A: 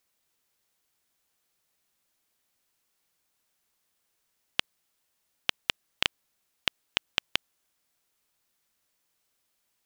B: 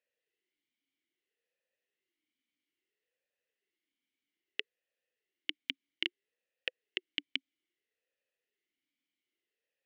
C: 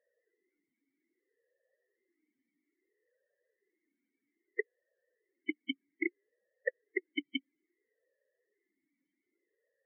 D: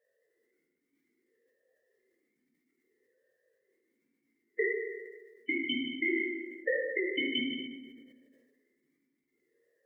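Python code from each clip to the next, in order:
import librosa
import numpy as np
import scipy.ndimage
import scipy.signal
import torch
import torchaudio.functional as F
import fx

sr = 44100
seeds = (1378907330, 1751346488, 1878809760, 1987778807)

y1 = fx.vowel_sweep(x, sr, vowels='e-i', hz=0.61)
y1 = y1 * 10.0 ** (4.0 / 20.0)
y2 = scipy.signal.savgol_filter(y1, 41, 4, mode='constant')
y2 = fx.spec_topn(y2, sr, count=16)
y2 = y2 * 10.0 ** (14.0 / 20.0)
y3 = fx.level_steps(y2, sr, step_db=17)
y3 = fx.rev_fdn(y3, sr, rt60_s=1.5, lf_ratio=1.1, hf_ratio=0.65, size_ms=39.0, drr_db=-5.5)
y3 = fx.sustainer(y3, sr, db_per_s=41.0)
y3 = y3 * 10.0 ** (2.5 / 20.0)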